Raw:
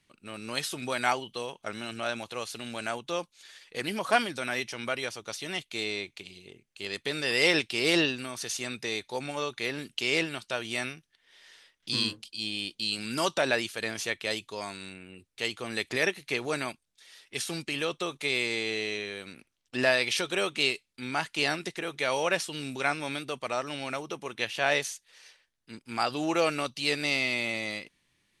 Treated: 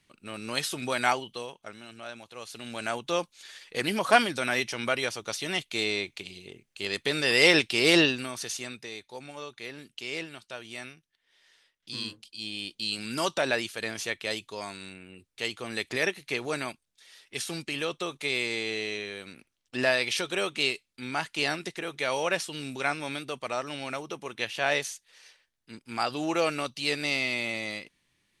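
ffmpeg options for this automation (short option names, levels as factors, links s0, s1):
-af "volume=13.3,afade=t=out:st=1.05:d=0.72:silence=0.281838,afade=t=in:st=2.32:d=0.83:silence=0.223872,afade=t=out:st=8.03:d=0.86:silence=0.251189,afade=t=in:st=11.92:d=0.98:silence=0.421697"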